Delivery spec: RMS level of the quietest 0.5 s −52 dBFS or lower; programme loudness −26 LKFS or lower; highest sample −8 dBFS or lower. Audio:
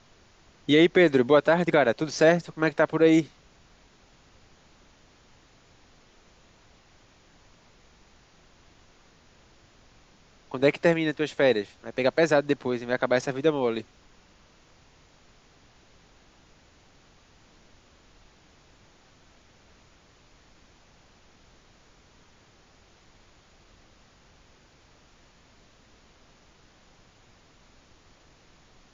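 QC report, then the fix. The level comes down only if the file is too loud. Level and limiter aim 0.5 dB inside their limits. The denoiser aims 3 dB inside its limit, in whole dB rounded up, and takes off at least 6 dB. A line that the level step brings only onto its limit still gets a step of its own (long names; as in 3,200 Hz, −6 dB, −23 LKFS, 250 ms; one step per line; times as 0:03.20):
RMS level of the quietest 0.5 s −58 dBFS: in spec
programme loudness −23.5 LKFS: out of spec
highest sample −6.5 dBFS: out of spec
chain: level −3 dB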